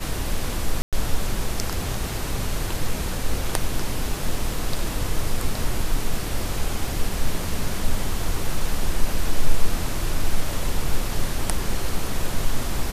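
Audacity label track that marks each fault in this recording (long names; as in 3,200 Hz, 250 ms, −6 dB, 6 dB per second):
0.820000	0.930000	drop-out 107 ms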